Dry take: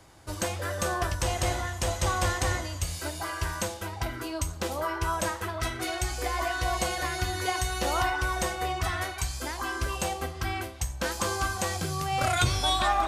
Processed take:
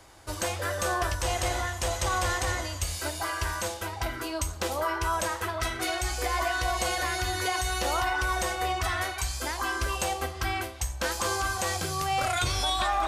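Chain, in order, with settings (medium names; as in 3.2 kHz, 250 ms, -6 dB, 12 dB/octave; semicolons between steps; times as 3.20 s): peaking EQ 160 Hz -8 dB 1.7 oct; peak limiter -21 dBFS, peak gain reduction 6.5 dB; trim +3 dB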